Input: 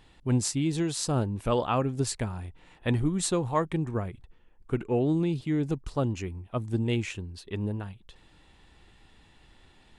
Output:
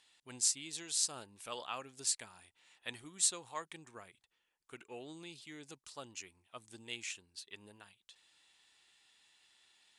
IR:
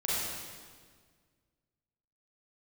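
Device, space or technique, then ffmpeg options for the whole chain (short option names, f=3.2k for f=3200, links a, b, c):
piezo pickup straight into a mixer: -af "lowpass=8.8k,aderivative,volume=2.5dB"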